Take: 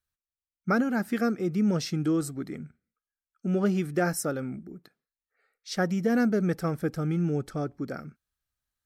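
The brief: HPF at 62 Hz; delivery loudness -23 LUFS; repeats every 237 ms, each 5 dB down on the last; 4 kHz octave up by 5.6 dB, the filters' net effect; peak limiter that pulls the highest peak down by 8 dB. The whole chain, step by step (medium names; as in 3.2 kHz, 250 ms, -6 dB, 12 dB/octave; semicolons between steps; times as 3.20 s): high-pass 62 Hz; peaking EQ 4 kHz +7.5 dB; peak limiter -21 dBFS; feedback delay 237 ms, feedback 56%, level -5 dB; trim +6.5 dB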